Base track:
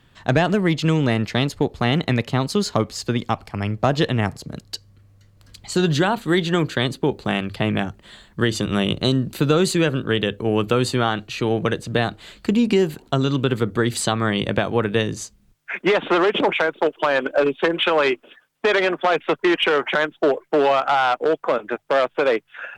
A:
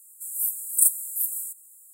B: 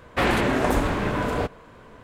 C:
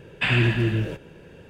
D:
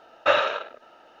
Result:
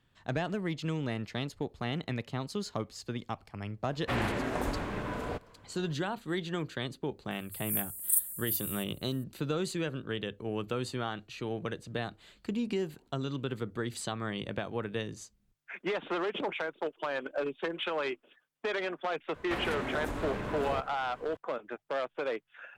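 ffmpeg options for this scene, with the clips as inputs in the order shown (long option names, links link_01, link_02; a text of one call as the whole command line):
ffmpeg -i bed.wav -i cue0.wav -i cue1.wav -filter_complex "[2:a]asplit=2[link_01][link_02];[0:a]volume=-15dB[link_03];[1:a]equalizer=frequency=7400:width=1.6:gain=-9.5[link_04];[link_02]acompressor=threshold=-27dB:ratio=6:attack=3.2:release=140:knee=1:detection=peak[link_05];[link_01]atrim=end=2.03,asetpts=PTS-STARTPTS,volume=-11dB,afade=type=in:duration=0.004:curve=hsin,afade=type=out:start_time=2.026:duration=0.004:curve=hsin,adelay=3910[link_06];[link_04]atrim=end=1.93,asetpts=PTS-STARTPTS,volume=-5dB,afade=type=in:duration=0.004:curve=hsin,afade=type=out:start_time=1.926:duration=0.004:curve=hsin,adelay=7310[link_07];[link_05]atrim=end=2.03,asetpts=PTS-STARTPTS,volume=-5dB,afade=type=in:duration=0.004:curve=hsin,afade=type=out:start_time=2.026:duration=0.004:curve=hsin,adelay=19340[link_08];[link_03][link_06][link_07][link_08]amix=inputs=4:normalize=0" out.wav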